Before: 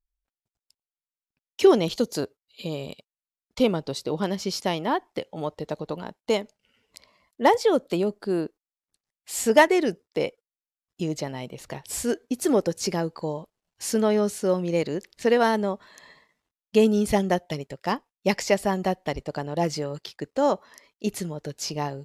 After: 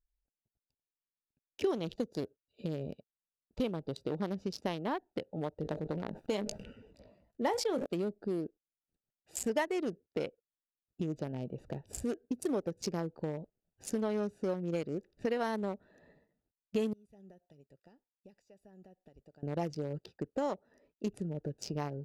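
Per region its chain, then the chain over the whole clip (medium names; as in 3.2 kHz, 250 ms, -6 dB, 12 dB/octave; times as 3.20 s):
5.57–7.86 s: doubling 19 ms -12 dB + decay stretcher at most 63 dB/s
16.93–19.43 s: pre-emphasis filter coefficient 0.9 + compression 5:1, threshold -49 dBFS
whole clip: local Wiener filter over 41 samples; compression 3:1, threshold -34 dBFS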